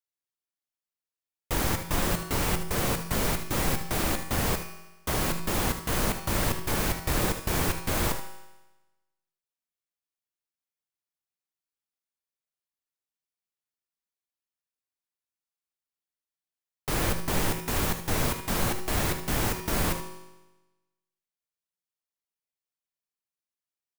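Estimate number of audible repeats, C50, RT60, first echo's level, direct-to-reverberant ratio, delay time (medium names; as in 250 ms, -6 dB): 1, 7.5 dB, 1.1 s, -11.0 dB, 5.5 dB, 76 ms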